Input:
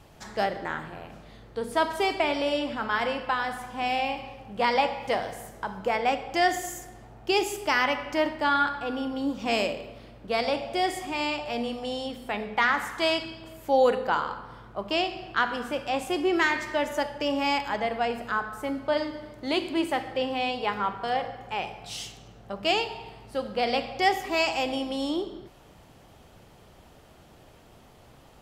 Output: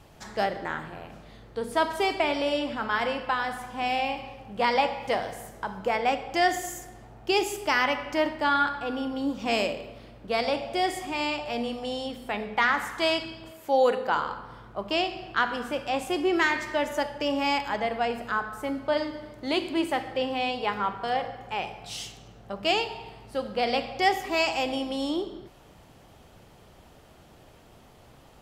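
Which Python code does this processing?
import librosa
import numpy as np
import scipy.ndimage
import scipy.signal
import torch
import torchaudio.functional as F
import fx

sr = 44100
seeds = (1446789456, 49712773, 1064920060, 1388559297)

y = fx.highpass(x, sr, hz=fx.line((13.5, 350.0), (14.13, 160.0)), slope=6, at=(13.5, 14.13), fade=0.02)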